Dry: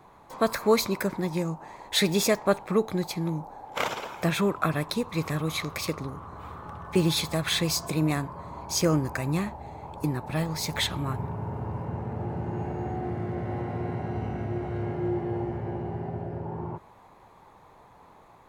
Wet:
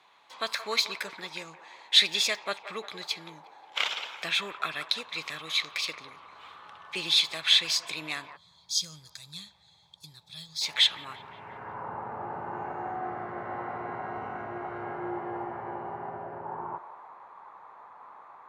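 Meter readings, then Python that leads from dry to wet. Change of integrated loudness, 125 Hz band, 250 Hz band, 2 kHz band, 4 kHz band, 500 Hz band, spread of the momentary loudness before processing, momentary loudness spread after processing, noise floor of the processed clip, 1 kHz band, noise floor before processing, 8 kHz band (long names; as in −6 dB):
−0.5 dB, −21.0 dB, −16.0 dB, +1.5 dB, +7.0 dB, −11.5 dB, 11 LU, 23 LU, −61 dBFS, −2.0 dB, −54 dBFS, −3.0 dB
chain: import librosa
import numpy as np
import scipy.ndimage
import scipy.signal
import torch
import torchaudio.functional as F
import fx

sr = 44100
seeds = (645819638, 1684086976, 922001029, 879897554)

y = fx.echo_wet_bandpass(x, sr, ms=176, feedback_pct=56, hz=920.0, wet_db=-12.0)
y = fx.filter_sweep_bandpass(y, sr, from_hz=3300.0, to_hz=1200.0, start_s=11.27, end_s=11.86, q=2.0)
y = fx.spec_box(y, sr, start_s=8.36, length_s=2.26, low_hz=210.0, high_hz=3200.0, gain_db=-20)
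y = y * librosa.db_to_amplitude(8.5)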